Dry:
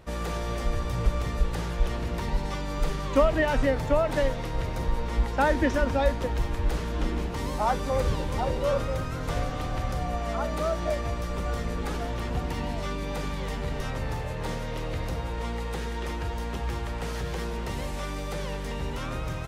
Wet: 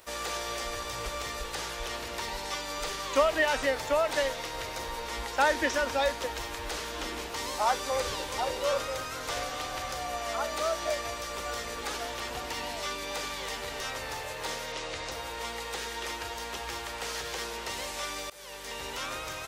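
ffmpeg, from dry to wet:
-filter_complex "[0:a]asettb=1/sr,asplit=3[a][b][c];[a]atrim=end=14.724[d];[b]atrim=start=14.72:end=15.12,asetpts=PTS-STARTPTS,afade=t=in:d=0.004:c=qsin,afade=t=out:st=0.396:d=0.004:c=qsin,lowpass=f=7.8k:w=0.5412,lowpass=f=7.8k:w=1.3066[e];[c]atrim=start=15.116[f];[d][e]acrossfade=d=0.004:c1=hsin:c2=qsin[g];[g][f]acrossfade=d=0.004:c1=qsin:c2=hsin,asplit=2[h][i];[h]atrim=end=18.3,asetpts=PTS-STARTPTS,afade=t=out:st=18.296:d=0.004:c=hsin:silence=0.0668344[j];[i]atrim=start=18.3,asetpts=PTS-STARTPTS,afade=t=in:d=0.55:silence=0.0668344[k];[j][k]concat=n=2:v=0:a=1,aemphasis=mode=production:type=riaa,acrossover=split=7200[l][m];[m]acompressor=threshold=-52dB:ratio=4:attack=1:release=60[n];[l][n]amix=inputs=2:normalize=0,equalizer=f=170:w=1.2:g=-9.5"

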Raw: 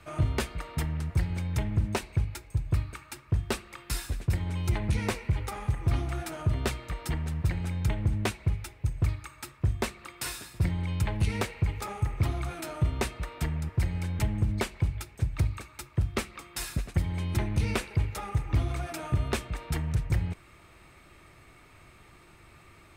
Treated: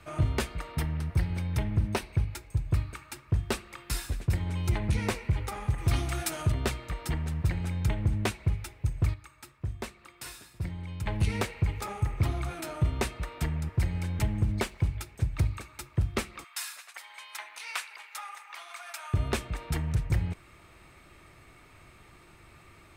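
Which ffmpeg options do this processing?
-filter_complex "[0:a]asettb=1/sr,asplit=3[a][b][c];[a]atrim=end=0.724[d];[b]atrim=start=0.72:end=2.29,asetpts=PTS-STARTPTS,afade=t=in:d=0.004:c=qsin,afade=t=out:st=1.566:d=0.004:c=qsin,equalizer=f=7.2k:w=6:g=-9[e];[c]atrim=start=2.286[f];[d][e]acrossfade=d=0.004:c1=hsin:c2=qsin[g];[g][f]acrossfade=d=0.004:c1=qsin:c2=hsin,asettb=1/sr,asplit=3[h][i][j];[h]atrim=end=5.784[k];[i]atrim=start=5.78:end=6.52,asetpts=PTS-STARTPTS,afade=t=in:d=0.004:c=qsin,afade=t=out:st=0.736:d=0.004:c=qsin,highshelf=f=2.4k:g=11[l];[j]atrim=start=6.516[m];[k][l]acrossfade=d=0.004:c1=hsin:c2=qsin[n];[n][m]acrossfade=d=0.004:c1=qsin:c2=hsin,asettb=1/sr,asplit=3[o][p][q];[o]atrim=end=14.014[r];[p]atrim=start=14.01:end=14.97,asetpts=PTS-STARTPTS,afade=t=in:d=0.004:c=qsin,afade=t=out:st=0.956:d=0.004:c=qsin,aeval=exprs='sgn(val(0))*max(abs(val(0))-0.00106,0)':c=same[s];[q]atrim=start=14.966[t];[r][s]acrossfade=d=0.004:c1=hsin:c2=qsin[u];[u][t]acrossfade=d=0.004:c1=qsin:c2=hsin,asettb=1/sr,asplit=3[v][w][x];[v]atrim=end=16.444[y];[w]atrim=start=16.44:end=19.14,asetpts=PTS-STARTPTS,afade=t=in:d=0.004:c=qsin,afade=t=out:st=2.696:d=0.004:c=qsin,highpass=f=930:w=0.5412,highpass=f=930:w=1.3066[z];[x]atrim=start=19.136[aa];[y][z]acrossfade=d=0.004:c1=hsin:c2=qsin[ab];[ab][aa]acrossfade=d=0.004:c1=qsin:c2=hsin,asplit=3[ac][ad][ae];[ac]atrim=end=9.142[af];[ad]atrim=start=9.138:end=11.062,asetpts=PTS-STARTPTS,volume=-7.5dB[ag];[ae]atrim=start=11.058[ah];[af][ag]acrossfade=d=0.004:c1=hsin:c2=hsin[ai];[ai][ah]acrossfade=d=0.004:c1=hsin:c2=hsin"

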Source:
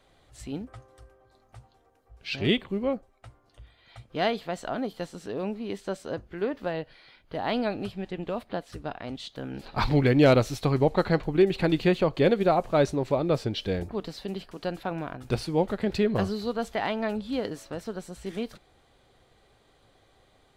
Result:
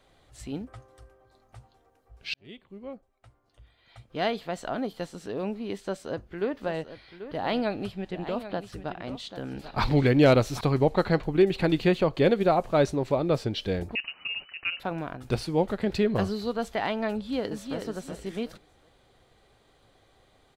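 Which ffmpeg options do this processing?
-filter_complex "[0:a]asettb=1/sr,asplit=3[a][b][c];[a]atrim=end=5.824[d];[b]atrim=start=5.82:end=10.61,asetpts=PTS-STARTPTS,afade=t=in:d=0.004:c=qsin,afade=t=out:st=4.786:d=0.004:c=qsin,aecho=1:1:788:0.251,atrim=end_sample=211239[e];[c]atrim=start=10.606[f];[d][e]acrossfade=d=0.004:c1=hsin:c2=qsin[g];[g][f]acrossfade=d=0.004:c1=qsin:c2=hsin,asettb=1/sr,asplit=3[h][i][j];[h]atrim=end=13.954[k];[i]atrim=start=13.95:end=14.8,asetpts=PTS-STARTPTS,afade=t=in:d=0.004:c=qsin,afade=t=out:st=0.846:d=0.004:c=qsin,lowpass=f=2.6k:t=q:w=0.5098,lowpass=f=2.6k:t=q:w=0.6013,lowpass=f=2.6k:t=q:w=0.9,lowpass=f=2.6k:t=q:w=2.563,afreqshift=-3000[l];[j]atrim=start=14.796[m];[k][l]acrossfade=d=0.004:c1=hsin:c2=qsin[n];[n][m]acrossfade=d=0.004:c1=qsin:c2=hsin,asplit=2[o][p];[p]afade=t=in:st=17.14:d=0.01,afade=t=out:st=17.78:d=0.01,aecho=0:1:370|740|1110:0.530884|0.132721|0.0331803[q];[o][q]amix=inputs=2:normalize=0,asplit=2[r][s];[r]atrim=end=2.34,asetpts=PTS-STARTPTS,afade=t=out:st=2.336:d=0.004:c=hsin[t];[s]atrim=start=2.34,asetpts=PTS-STARTPTS,afade=t=in:d=2.27[u];[t][u]concat=n=2:v=0:a=1"

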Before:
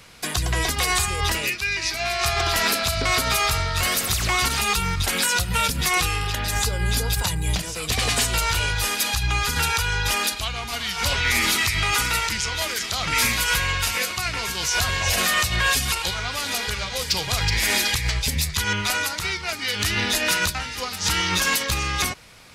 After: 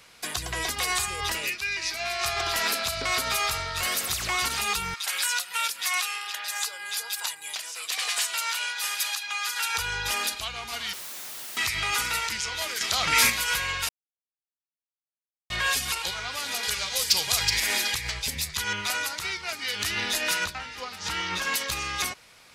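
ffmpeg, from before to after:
-filter_complex "[0:a]asettb=1/sr,asplit=3[a][b][c];[a]atrim=end=4.944[d];[b]atrim=start=4.94:end=9.75,asetpts=PTS-STARTPTS,afade=t=in:d=0.004:c=qsin,afade=t=out:st=4.806:d=0.004:c=qsin,highpass=960[e];[c]atrim=start=9.746[f];[d][e]acrossfade=d=0.004:c1=hsin:c2=qsin[g];[g][f]acrossfade=d=0.004:c1=qsin:c2=hsin,asettb=1/sr,asplit=3[h][i][j];[h]atrim=end=10.934[k];[i]atrim=start=10.93:end=11.57,asetpts=PTS-STARTPTS,afade=t=in:d=0.004:c=qsin,afade=t=out:st=0.636:d=0.004:c=qsin,aeval=exprs='(mod(28.2*val(0)+1,2)-1)/28.2':c=same[l];[j]atrim=start=11.566[m];[k][l]acrossfade=d=0.004:c1=hsin:c2=qsin[n];[n][m]acrossfade=d=0.004:c1=qsin:c2=hsin,asettb=1/sr,asplit=3[o][p][q];[o]atrim=end=16.634[r];[p]atrim=start=16.63:end=17.6,asetpts=PTS-STARTPTS,afade=t=in:d=0.004:c=qsin,afade=t=out:st=0.966:d=0.004:c=qsin,highshelf=f=4.1k:g=10.5[s];[q]atrim=start=17.596[t];[r][s]acrossfade=d=0.004:c1=hsin:c2=qsin[u];[u][t]acrossfade=d=0.004:c1=qsin:c2=hsin,asettb=1/sr,asplit=3[v][w][x];[v]atrim=end=20.444[y];[w]atrim=start=20.44:end=21.54,asetpts=PTS-STARTPTS,afade=t=in:d=0.004:c=qsin,afade=t=out:st=1.096:d=0.004:c=qsin,lowpass=f=3k:p=1[z];[x]atrim=start=21.536[aa];[y][z]acrossfade=d=0.004:c1=hsin:c2=qsin[ab];[ab][aa]acrossfade=d=0.004:c1=qsin:c2=hsin,asplit=5[ac][ad][ae][af][ag];[ac]atrim=end=12.812[ah];[ad]atrim=start=12.808:end=13.302,asetpts=PTS-STARTPTS,volume=5.5dB[ai];[ae]atrim=start=13.298:end=13.89,asetpts=PTS-STARTPTS,afade=t=out:st=0.588:d=0.004:c=hsin[aj];[af]atrim=start=13.89:end=15.5,asetpts=PTS-STARTPTS,volume=0[ak];[ag]atrim=start=15.5,asetpts=PTS-STARTPTS,afade=t=in:d=0.004:c=hsin[al];[ah][ai]acrossfade=d=0.004:c1=hsin:c2=hsin[am];[aj][ak][al]concat=n=3:v=0:a=1[an];[am][an]acrossfade=d=0.004:c1=hsin:c2=hsin,lowshelf=f=260:g=-10.5,volume=-4.5dB"

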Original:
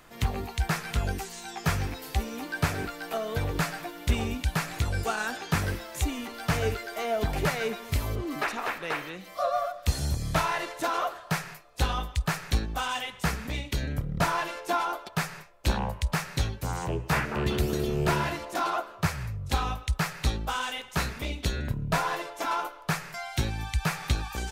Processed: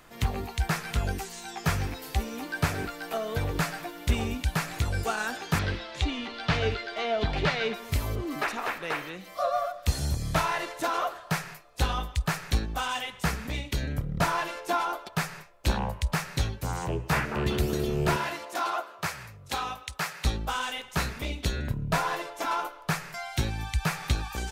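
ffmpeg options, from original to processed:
-filter_complex "[0:a]asettb=1/sr,asplit=3[a][b][c];[a]atrim=end=5.594[d];[b]atrim=start=5.59:end=7.74,asetpts=PTS-STARTPTS,afade=t=in:d=0.004:c=qsin,afade=t=out:st=2.146:d=0.004:c=qsin,lowpass=f=3.8k:t=q:w=2[e];[c]atrim=start=7.736[f];[d][e]acrossfade=d=0.004:c1=hsin:c2=qsin[g];[g][f]acrossfade=d=0.004:c1=qsin:c2=hsin,asettb=1/sr,asplit=3[h][i][j];[h]atrim=end=18.164[k];[i]atrim=start=18.16:end=20.25,asetpts=PTS-STARTPTS,afade=t=in:d=0.004:c=qsin,afade=t=out:st=2.086:d=0.004:c=qsin,highpass=f=490:p=1[l];[j]atrim=start=20.246[m];[k][l]acrossfade=d=0.004:c1=hsin:c2=qsin[n];[n][m]acrossfade=d=0.004:c1=qsin:c2=hsin"

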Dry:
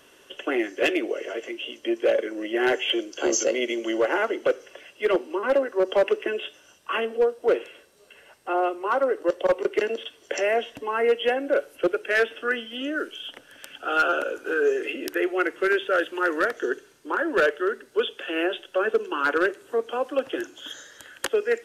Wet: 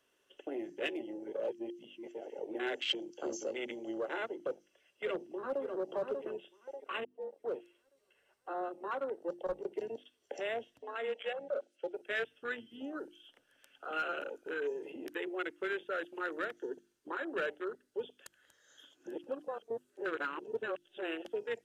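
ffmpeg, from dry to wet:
-filter_complex "[0:a]asplit=2[a][b];[b]afade=t=in:st=4.47:d=0.01,afade=t=out:st=5.62:d=0.01,aecho=0:1:590|1180|1770|2360|2950:0.530884|0.212354|0.0849415|0.0339766|0.0135906[c];[a][c]amix=inputs=2:normalize=0,asplit=3[d][e][f];[d]afade=t=out:st=10.78:d=0.02[g];[e]highpass=490,equalizer=f=580:t=q:w=4:g=6,equalizer=f=980:t=q:w=4:g=-10,equalizer=f=3.5k:t=q:w=4:g=4,lowpass=f=8.1k:w=0.5412,lowpass=f=8.1k:w=1.3066,afade=t=in:st=10.78:d=0.02,afade=t=out:st=11.93:d=0.02[h];[f]afade=t=in:st=11.93:d=0.02[i];[g][h][i]amix=inputs=3:normalize=0,asplit=6[j][k][l][m][n][o];[j]atrim=end=1.002[p];[k]atrim=start=0.998:end=2.552,asetpts=PTS-STARTPTS,areverse[q];[l]atrim=start=2.548:end=7.05,asetpts=PTS-STARTPTS,afade=t=out:st=4.498:d=0.004:c=hsin[r];[m]atrim=start=7.05:end=18.262,asetpts=PTS-STARTPTS,afade=t=in:d=0.55[s];[n]atrim=start=18.258:end=21.252,asetpts=PTS-STARTPTS,areverse[t];[o]atrim=start=21.248[u];[p][q]acrossfade=d=0.004:c1=hsin:c2=hsin[v];[r][s]concat=n=2:v=0:a=1[w];[v][w]acrossfade=d=0.004:c1=hsin:c2=hsin[x];[x][t]acrossfade=d=0.004:c1=hsin:c2=hsin[y];[y][u]acrossfade=d=0.004:c1=hsin:c2=hsin,afwtdn=0.0447,bandreject=f=50:t=h:w=6,bandreject=f=100:t=h:w=6,bandreject=f=150:t=h:w=6,bandreject=f=200:t=h:w=6,bandreject=f=250:t=h:w=6,bandreject=f=300:t=h:w=6,bandreject=f=350:t=h:w=6,acrossover=split=160|3000[z][aa][ab];[aa]acompressor=threshold=-49dB:ratio=1.5[ac];[z][ac][ab]amix=inputs=3:normalize=0,volume=-4.5dB"

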